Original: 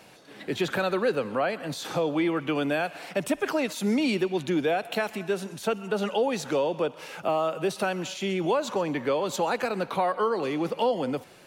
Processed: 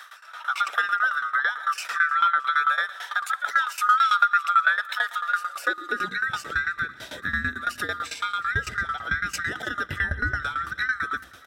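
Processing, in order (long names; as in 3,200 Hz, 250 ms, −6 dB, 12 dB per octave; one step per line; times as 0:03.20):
neighbouring bands swapped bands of 1,000 Hz
hum removal 64.2 Hz, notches 5
in parallel at +1 dB: downward compressor, threshold −33 dBFS, peak gain reduction 12.5 dB
on the sum: high-pass filter sweep 1,100 Hz → 68 Hz, 0:05.36–0:06.53
shaped tremolo saw down 9 Hz, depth 90%
on a send: repeating echo 310 ms, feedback 59%, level −24 dB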